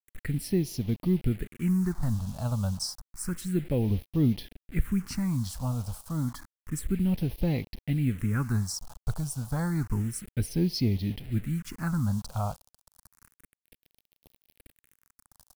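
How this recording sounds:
a quantiser's noise floor 8 bits, dither none
phaser sweep stages 4, 0.3 Hz, lowest notch 320–1,400 Hz

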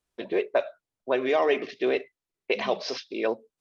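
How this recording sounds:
background noise floor −91 dBFS
spectral slope −1.5 dB per octave

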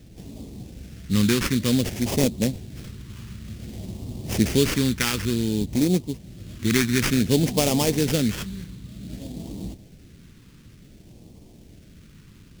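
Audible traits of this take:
aliases and images of a low sample rate 4,000 Hz, jitter 20%
phaser sweep stages 2, 0.55 Hz, lowest notch 660–1,400 Hz

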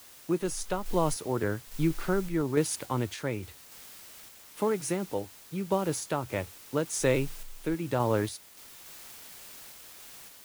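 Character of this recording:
a quantiser's noise floor 8 bits, dither triangular
sample-and-hold tremolo

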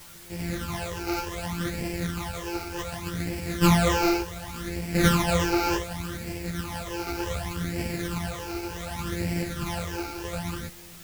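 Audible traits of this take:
a buzz of ramps at a fixed pitch in blocks of 256 samples
phaser sweep stages 12, 0.67 Hz, lowest notch 180–1,200 Hz
a quantiser's noise floor 8 bits, dither triangular
a shimmering, thickened sound

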